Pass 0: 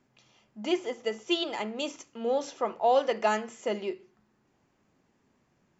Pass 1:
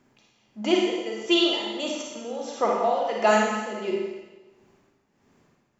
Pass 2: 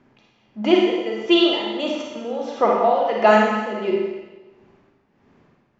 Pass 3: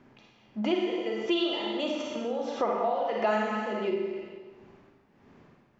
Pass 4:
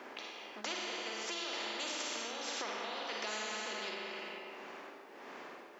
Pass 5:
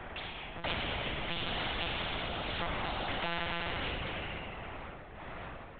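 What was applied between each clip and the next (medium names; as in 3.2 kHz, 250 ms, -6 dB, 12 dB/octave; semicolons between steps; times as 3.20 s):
tremolo 1.5 Hz, depth 82%; Schroeder reverb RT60 1.2 s, DRR -1.5 dB; trim +5.5 dB
distance through air 200 m; trim +6.5 dB
compression 2.5:1, threshold -30 dBFS, peak gain reduction 13.5 dB
Chebyshev high-pass 380 Hz, order 3; spectrum-flattening compressor 4:1; trim -8 dB
monotone LPC vocoder at 8 kHz 170 Hz; trim +5.5 dB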